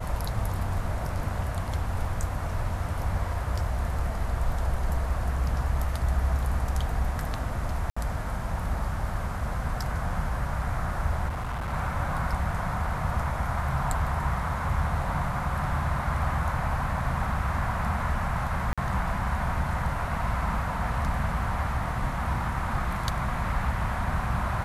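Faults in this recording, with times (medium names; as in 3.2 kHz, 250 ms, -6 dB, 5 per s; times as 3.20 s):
7.90–7.96 s: dropout 65 ms
11.28–11.74 s: clipped -28.5 dBFS
18.73–18.78 s: dropout 46 ms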